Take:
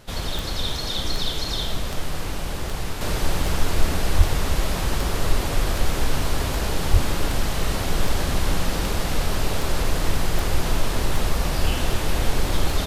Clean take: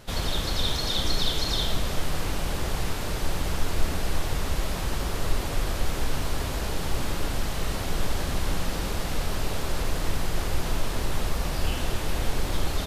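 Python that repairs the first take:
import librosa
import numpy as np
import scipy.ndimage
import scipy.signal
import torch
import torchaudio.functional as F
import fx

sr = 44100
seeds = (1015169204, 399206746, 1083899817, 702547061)

y = fx.fix_declick_ar(x, sr, threshold=10.0)
y = fx.highpass(y, sr, hz=140.0, slope=24, at=(4.17, 4.29), fade=0.02)
y = fx.highpass(y, sr, hz=140.0, slope=24, at=(6.92, 7.04), fade=0.02)
y = fx.fix_level(y, sr, at_s=3.01, step_db=-5.0)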